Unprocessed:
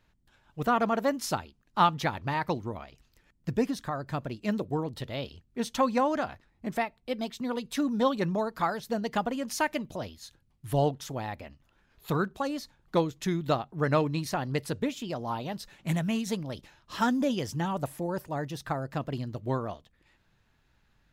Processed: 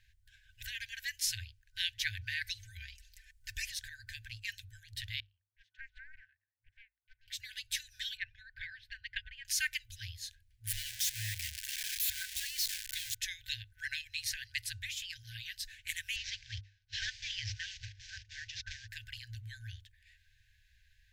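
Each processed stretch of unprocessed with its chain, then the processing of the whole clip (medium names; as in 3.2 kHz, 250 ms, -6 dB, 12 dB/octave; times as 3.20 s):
2.44–3.72 s: peaking EQ 8.9 kHz +5 dB 2 oct + comb 4.5 ms, depth 77%
5.20–7.28 s: ladder band-pass 480 Hz, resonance 25% + loudspeaker Doppler distortion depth 0.65 ms
8.17–9.45 s: transient shaper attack +8 dB, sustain -3 dB + distance through air 410 m
10.67–13.15 s: zero-crossing glitches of -22 dBFS + low-pass 3.8 kHz 6 dB/octave
16.16–18.88 s: CVSD coder 32 kbps + peaking EQ 91 Hz +5.5 dB 1.9 oct + gate -44 dBFS, range -17 dB
whole clip: hum notches 50/100 Hz; FFT band-reject 110–1500 Hz; dynamic bell 1.5 kHz, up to -7 dB, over -55 dBFS, Q 2.6; trim +3 dB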